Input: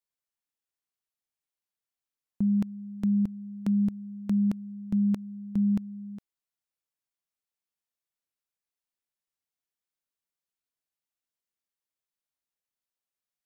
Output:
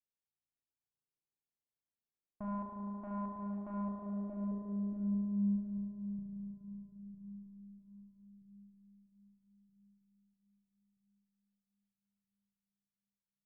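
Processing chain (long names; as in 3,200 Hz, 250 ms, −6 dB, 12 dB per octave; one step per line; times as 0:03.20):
low-pass that shuts in the quiet parts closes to 330 Hz, open at −22 dBFS
tube saturation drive 39 dB, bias 0.45
feedback echo with a long and a short gap by turns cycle 1,275 ms, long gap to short 3 to 1, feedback 31%, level −9.5 dB
low-pass filter sweep 930 Hz → 150 Hz, 0:03.66–0:05.82
spring reverb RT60 3.8 s, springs 35 ms, chirp 40 ms, DRR −3.5 dB
level −3 dB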